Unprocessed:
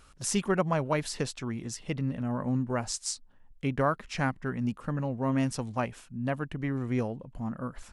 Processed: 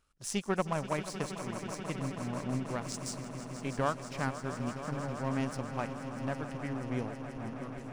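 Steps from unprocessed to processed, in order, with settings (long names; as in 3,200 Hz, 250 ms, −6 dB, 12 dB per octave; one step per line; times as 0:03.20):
power curve on the samples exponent 1.4
echo that builds up and dies away 161 ms, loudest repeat 5, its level −13.5 dB
level −1.5 dB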